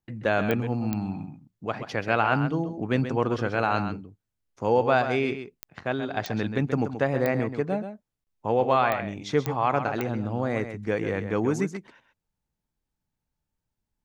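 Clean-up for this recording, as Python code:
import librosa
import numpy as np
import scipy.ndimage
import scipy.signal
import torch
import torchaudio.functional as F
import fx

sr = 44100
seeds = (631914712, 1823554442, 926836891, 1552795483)

y = fx.fix_declick_ar(x, sr, threshold=10.0)
y = fx.fix_interpolate(y, sr, at_s=(8.24,), length_ms=29.0)
y = fx.fix_echo_inverse(y, sr, delay_ms=131, level_db=-9.5)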